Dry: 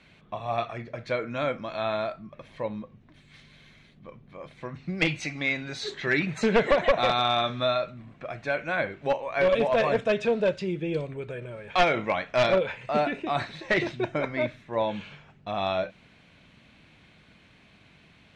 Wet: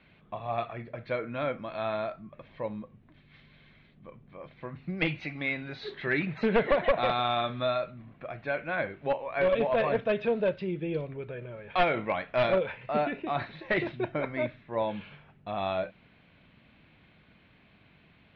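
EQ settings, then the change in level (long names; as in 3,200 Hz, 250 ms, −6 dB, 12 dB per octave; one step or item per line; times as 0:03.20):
low-pass filter 4,300 Hz 24 dB per octave
high-frequency loss of the air 150 metres
−2.5 dB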